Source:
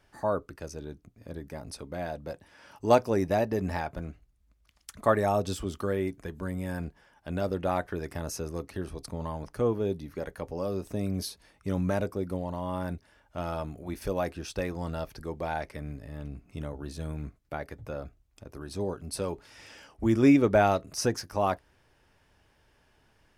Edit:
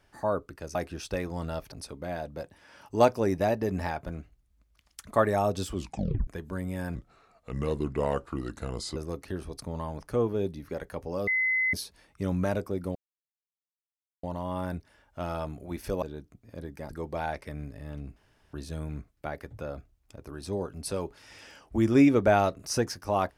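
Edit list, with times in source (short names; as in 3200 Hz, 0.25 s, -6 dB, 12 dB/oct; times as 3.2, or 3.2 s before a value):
0.75–1.62 swap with 14.2–15.17
5.65 tape stop 0.52 s
6.85–8.42 speed 78%
10.73–11.19 bleep 2040 Hz -23 dBFS
12.41 insert silence 1.28 s
16.44–16.81 room tone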